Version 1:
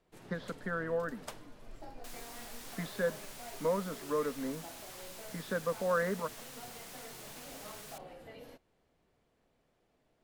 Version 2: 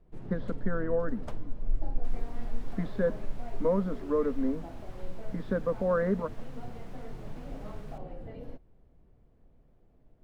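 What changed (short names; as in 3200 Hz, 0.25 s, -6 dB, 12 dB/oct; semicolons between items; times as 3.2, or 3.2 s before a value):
speech: add brick-wall FIR high-pass 170 Hz; second sound: add bell 11000 Hz -6 dB 2.4 oct; master: add tilt -4.5 dB/oct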